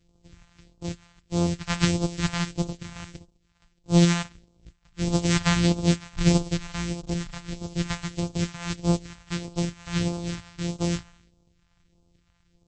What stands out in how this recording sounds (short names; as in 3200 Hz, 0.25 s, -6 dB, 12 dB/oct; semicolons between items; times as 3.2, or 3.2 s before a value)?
a buzz of ramps at a fixed pitch in blocks of 256 samples; phasing stages 2, 1.6 Hz, lowest notch 360–1800 Hz; MP3